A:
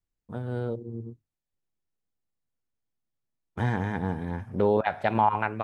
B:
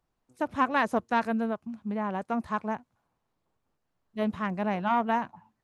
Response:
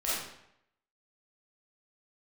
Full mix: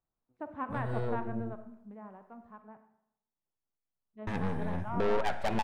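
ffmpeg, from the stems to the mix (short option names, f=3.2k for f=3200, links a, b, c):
-filter_complex "[0:a]aeval=exprs='(tanh(28.2*val(0)+0.6)-tanh(0.6))/28.2':c=same,adelay=400,volume=2dB,asplit=3[a][b][c];[a]atrim=end=2.57,asetpts=PTS-STARTPTS,afade=t=out:st=2.566:d=0.004:c=hsin[d];[b]atrim=start=2.57:end=4.27,asetpts=PTS-STARTPTS,volume=0[e];[c]atrim=start=4.27,asetpts=PTS-STARTPTS,afade=t=in:d=0.004:c=hsin[f];[d][e][f]concat=n=3:v=0:a=1,asplit=2[g][h];[h]volume=-22.5dB[i];[1:a]lowpass=1.6k,volume=-4.5dB,afade=t=out:st=1.43:d=0.8:silence=0.334965,afade=t=in:st=3.82:d=0.79:silence=0.398107,asplit=2[j][k];[k]volume=-14.5dB[l];[2:a]atrim=start_sample=2205[m];[i][l]amix=inputs=2:normalize=0[n];[n][m]afir=irnorm=-1:irlink=0[o];[g][j][o]amix=inputs=3:normalize=0"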